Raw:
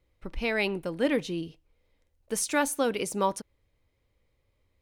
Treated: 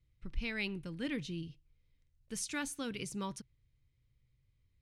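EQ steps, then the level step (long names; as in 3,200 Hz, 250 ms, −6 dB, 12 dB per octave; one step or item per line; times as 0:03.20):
high-frequency loss of the air 51 metres
guitar amp tone stack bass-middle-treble 6-0-2
parametric band 130 Hz +14.5 dB 0.29 octaves
+10.5 dB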